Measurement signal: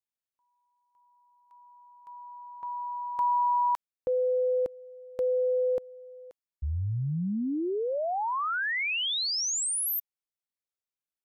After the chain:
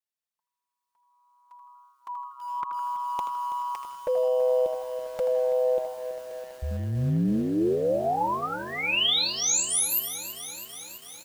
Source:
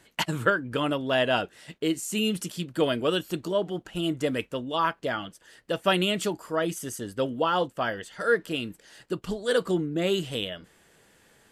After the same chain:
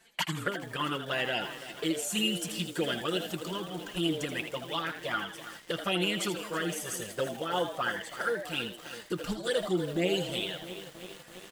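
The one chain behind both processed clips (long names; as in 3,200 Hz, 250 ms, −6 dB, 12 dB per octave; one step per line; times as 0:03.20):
camcorder AGC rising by 8 dB per second
low-shelf EQ 410 Hz −8 dB
comb filter 5.7 ms, depth 42%
dynamic equaliser 620 Hz, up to −4 dB, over −41 dBFS, Q 5.5
downward compressor 4 to 1, threshold −22 dBFS
flanger swept by the level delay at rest 4.6 ms, full sweep at −22 dBFS
echo with shifted repeats 80 ms, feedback 35%, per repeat +130 Hz, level −9 dB
feedback echo at a low word length 329 ms, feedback 80%, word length 7 bits, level −12.5 dB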